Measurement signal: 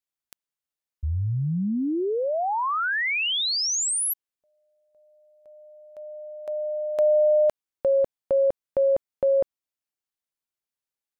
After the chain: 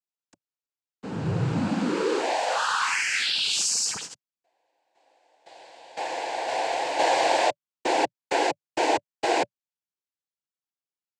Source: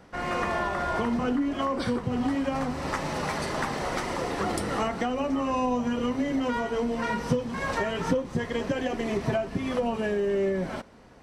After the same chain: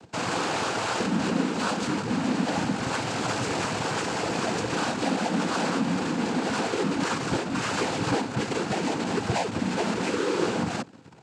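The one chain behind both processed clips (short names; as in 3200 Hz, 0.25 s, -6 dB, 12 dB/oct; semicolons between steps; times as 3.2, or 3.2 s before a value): half-waves squared off; bell 2100 Hz -4 dB 0.39 oct; in parallel at -11 dB: fuzz box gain 45 dB, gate -46 dBFS; on the sum: noise vocoder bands 8; notch 580 Hz, Q 12; gain -7.5 dB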